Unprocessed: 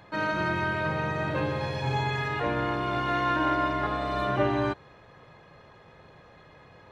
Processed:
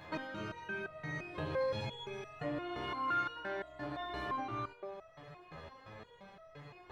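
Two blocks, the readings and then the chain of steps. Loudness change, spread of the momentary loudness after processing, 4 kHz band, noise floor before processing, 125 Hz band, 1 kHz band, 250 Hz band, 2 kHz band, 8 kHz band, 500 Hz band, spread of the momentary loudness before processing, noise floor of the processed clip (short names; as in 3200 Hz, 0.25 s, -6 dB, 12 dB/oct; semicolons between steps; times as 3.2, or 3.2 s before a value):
-11.5 dB, 19 LU, -9.5 dB, -54 dBFS, -15.0 dB, -11.5 dB, -13.5 dB, -12.0 dB, n/a, -10.0 dB, 4 LU, -59 dBFS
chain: compressor 6:1, threshold -36 dBFS, peak gain reduction 15 dB; narrowing echo 97 ms, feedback 80%, band-pass 860 Hz, level -11.5 dB; stepped resonator 5.8 Hz 80–650 Hz; gain +11 dB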